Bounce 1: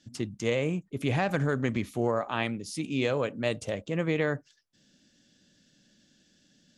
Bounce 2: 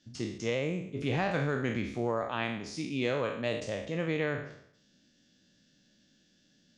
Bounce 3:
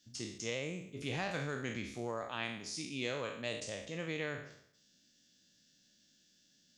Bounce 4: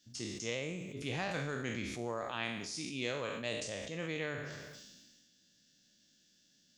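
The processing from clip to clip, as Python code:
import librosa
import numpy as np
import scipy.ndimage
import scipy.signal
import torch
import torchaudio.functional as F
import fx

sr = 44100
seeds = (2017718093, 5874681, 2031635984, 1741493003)

y1 = fx.spec_trails(x, sr, decay_s=0.68)
y1 = scipy.signal.sosfilt(scipy.signal.butter(4, 6800.0, 'lowpass', fs=sr, output='sos'), y1)
y1 = y1 * librosa.db_to_amplitude(-4.5)
y2 = F.preemphasis(torch.from_numpy(y1), 0.8).numpy()
y2 = y2 * librosa.db_to_amplitude(5.0)
y3 = fx.echo_feedback(y2, sr, ms=135, feedback_pct=39, wet_db=-20.5)
y3 = fx.sustainer(y3, sr, db_per_s=31.0)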